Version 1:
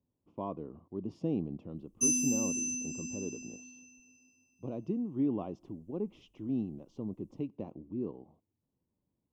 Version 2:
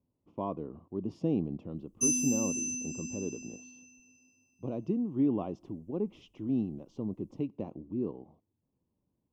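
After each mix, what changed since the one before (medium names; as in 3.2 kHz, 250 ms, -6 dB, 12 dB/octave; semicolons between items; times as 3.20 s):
speech +3.0 dB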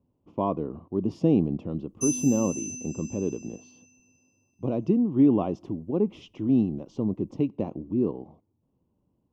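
speech +8.5 dB; background: send off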